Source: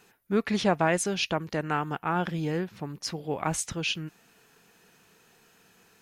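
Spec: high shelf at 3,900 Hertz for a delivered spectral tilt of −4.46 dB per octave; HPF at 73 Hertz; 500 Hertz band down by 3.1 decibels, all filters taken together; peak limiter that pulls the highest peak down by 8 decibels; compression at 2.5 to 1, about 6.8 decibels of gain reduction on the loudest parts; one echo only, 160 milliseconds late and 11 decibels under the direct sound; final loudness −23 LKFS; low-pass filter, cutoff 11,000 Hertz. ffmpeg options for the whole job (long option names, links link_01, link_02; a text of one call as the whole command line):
ffmpeg -i in.wav -af "highpass=73,lowpass=11000,equalizer=frequency=500:width_type=o:gain=-4,highshelf=frequency=3900:gain=-3.5,acompressor=threshold=-31dB:ratio=2.5,alimiter=level_in=1dB:limit=-24dB:level=0:latency=1,volume=-1dB,aecho=1:1:160:0.282,volume=13dB" out.wav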